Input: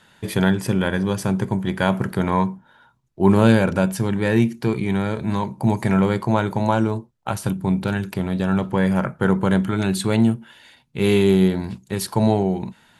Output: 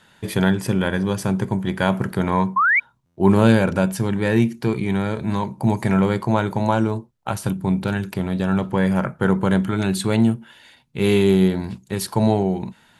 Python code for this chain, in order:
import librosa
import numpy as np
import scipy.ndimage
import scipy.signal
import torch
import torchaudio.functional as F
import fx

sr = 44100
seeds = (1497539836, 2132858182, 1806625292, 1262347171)

y = fx.spec_paint(x, sr, seeds[0], shape='rise', start_s=2.56, length_s=0.24, low_hz=1000.0, high_hz=2400.0, level_db=-16.0)
y = fx.buffer_glitch(y, sr, at_s=(3.05,), block=512, repeats=9)